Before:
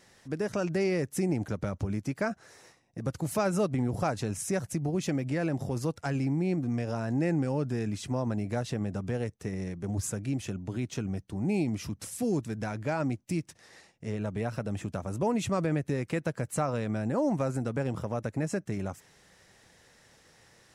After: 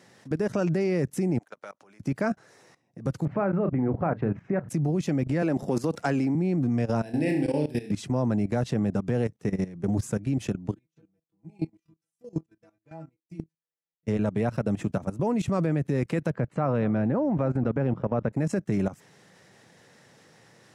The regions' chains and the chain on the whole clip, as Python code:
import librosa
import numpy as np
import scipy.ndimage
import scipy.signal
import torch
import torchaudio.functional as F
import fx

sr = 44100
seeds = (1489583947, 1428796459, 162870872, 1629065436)

y = fx.chain(x, sr, fx.highpass(hz=840.0, slope=12),
    fx.level_steps(step_db=21), at=(1.38, 2.0))
y = fx.chain(y, sr, fx.lowpass(hz=2100.0, slope=24),
    fx.hum_notches(base_hz=60, count=4),
    fx.doubler(ms=35.0, db=-13.0), at=(3.25, 4.69))
y = fx.chain(y, sr, fx.highpass(hz=220.0, slope=12),
    fx.env_flatten(amount_pct=50), at=(5.42, 6.35))
y = fx.chain(y, sr, fx.riaa(side='recording'),
    fx.fixed_phaser(hz=3000.0, stages=4),
    fx.room_flutter(wall_m=5.7, rt60_s=0.54), at=(7.02, 7.91))
y = fx.chain(y, sr, fx.stiff_resonator(f0_hz=160.0, decay_s=0.22, stiffness=0.002),
    fx.upward_expand(threshold_db=-55.0, expansion=2.5), at=(10.74, 14.07))
y = fx.chain(y, sr, fx.lowpass(hz=2500.0, slope=12),
    fx.echo_single(ms=230, db=-22.5), at=(16.3, 18.33))
y = scipy.signal.sosfilt(scipy.signal.butter(4, 120.0, 'highpass', fs=sr, output='sos'), y)
y = fx.tilt_eq(y, sr, slope=-1.5)
y = fx.level_steps(y, sr, step_db=16)
y = F.gain(torch.from_numpy(y), 7.5).numpy()